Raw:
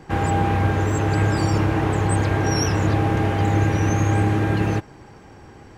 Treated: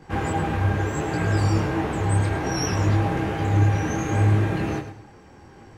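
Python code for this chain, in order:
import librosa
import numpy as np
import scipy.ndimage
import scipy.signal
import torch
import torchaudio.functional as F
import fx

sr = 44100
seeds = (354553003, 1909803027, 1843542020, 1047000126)

y = fx.echo_feedback(x, sr, ms=107, feedback_pct=28, wet_db=-10.0)
y = fx.detune_double(y, sr, cents=24)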